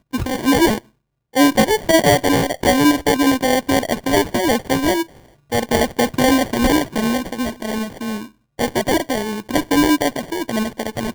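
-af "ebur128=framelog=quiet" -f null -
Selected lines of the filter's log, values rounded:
Integrated loudness:
  I:         -17.9 LUFS
  Threshold: -28.1 LUFS
Loudness range:
  LRA:         4.7 LU
  Threshold: -38.1 LUFS
  LRA low:   -20.6 LUFS
  LRA high:  -15.8 LUFS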